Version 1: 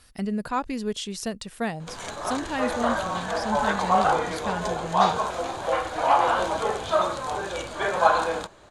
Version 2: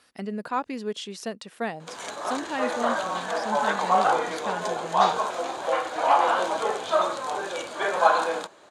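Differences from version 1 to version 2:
speech: add treble shelf 5.7 kHz -10 dB; master: add high-pass 260 Hz 12 dB/octave

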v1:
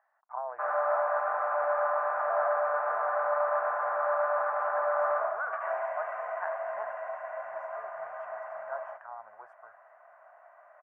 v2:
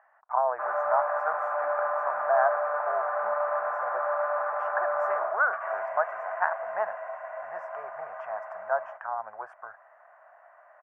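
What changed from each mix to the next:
speech +11.0 dB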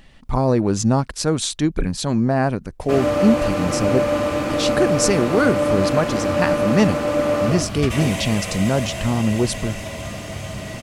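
background: entry +2.30 s; master: remove elliptic band-pass 670–1600 Hz, stop band 50 dB

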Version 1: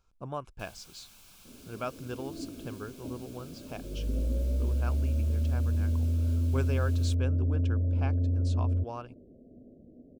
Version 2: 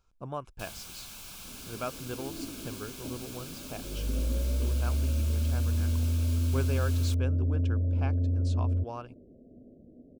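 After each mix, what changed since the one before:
first sound +10.5 dB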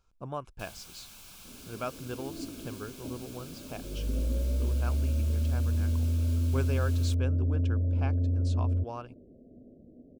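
first sound -5.0 dB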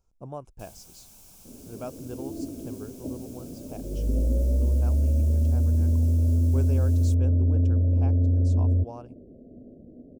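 second sound +6.0 dB; master: add high-order bell 2.2 kHz -11 dB 2.3 oct

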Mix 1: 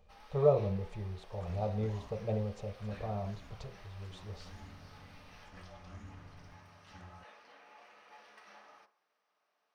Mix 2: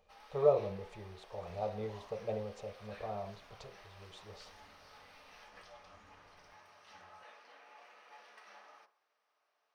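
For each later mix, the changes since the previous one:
second sound -7.5 dB; master: add tone controls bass -12 dB, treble 0 dB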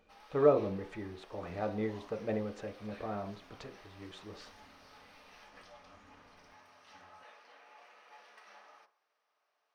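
speech: remove static phaser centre 680 Hz, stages 4; second sound: add peaking EQ 260 Hz +11 dB 0.28 oct

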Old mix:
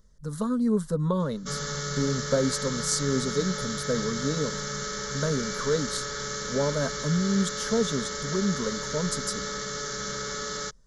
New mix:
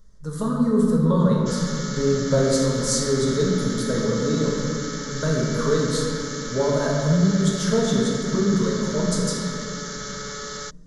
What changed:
speech -3.0 dB; reverb: on, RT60 2.4 s

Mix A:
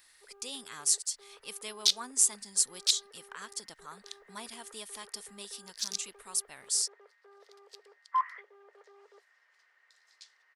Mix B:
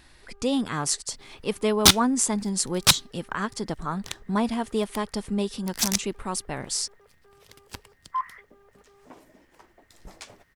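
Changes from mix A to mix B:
speech: remove pre-emphasis filter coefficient 0.97; second sound: remove ladder band-pass 5 kHz, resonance 45%

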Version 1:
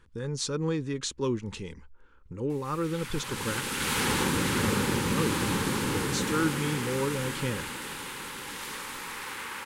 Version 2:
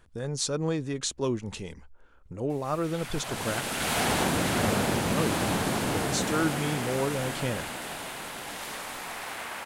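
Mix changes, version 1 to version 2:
speech: add treble shelf 8.9 kHz +10 dB; master: remove Butterworth band-stop 670 Hz, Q 2.2

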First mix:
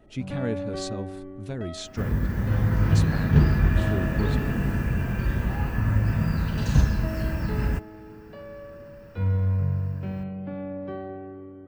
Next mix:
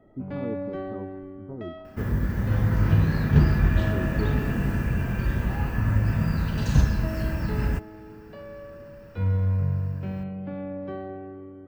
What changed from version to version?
speech: add rippled Chebyshev low-pass 1.3 kHz, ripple 9 dB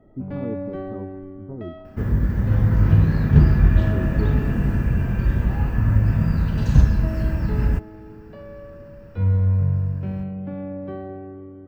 master: add tilt EQ -1.5 dB/octave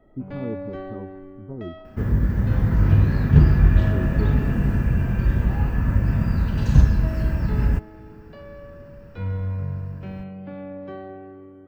first sound: add tilt EQ +2.5 dB/octave

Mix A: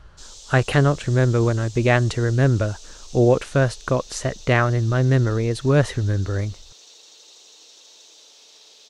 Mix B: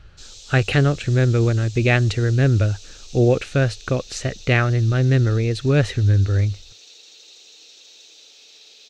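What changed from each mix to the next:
master: add graphic EQ with 31 bands 100 Hz +7 dB, 630 Hz -4 dB, 1 kHz -12 dB, 2.5 kHz +7 dB, 4 kHz +4 dB, 10 kHz -11 dB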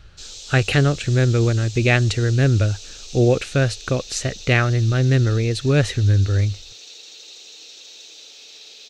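speech: add treble shelf 5.4 kHz +9 dB; background +5.0 dB

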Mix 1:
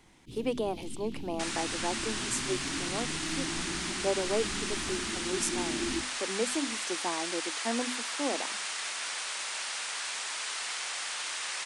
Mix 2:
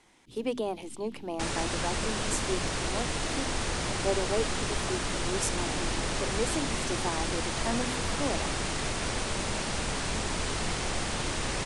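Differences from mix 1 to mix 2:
first sound -7.5 dB; second sound: remove high-pass 1.3 kHz 12 dB/octave

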